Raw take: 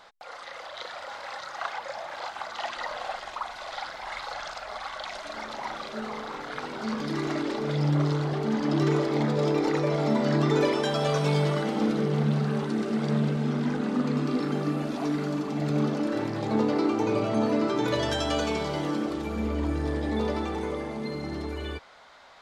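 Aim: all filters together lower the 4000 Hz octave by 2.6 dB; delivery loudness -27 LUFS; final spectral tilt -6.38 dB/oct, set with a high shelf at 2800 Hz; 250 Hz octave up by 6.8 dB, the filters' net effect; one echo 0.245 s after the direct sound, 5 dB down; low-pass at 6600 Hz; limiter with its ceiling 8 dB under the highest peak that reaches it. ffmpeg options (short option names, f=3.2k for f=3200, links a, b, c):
-af "lowpass=6.6k,equalizer=f=250:t=o:g=8.5,highshelf=f=2.8k:g=7.5,equalizer=f=4k:t=o:g=-9,alimiter=limit=-15.5dB:level=0:latency=1,aecho=1:1:245:0.562,volume=-3dB"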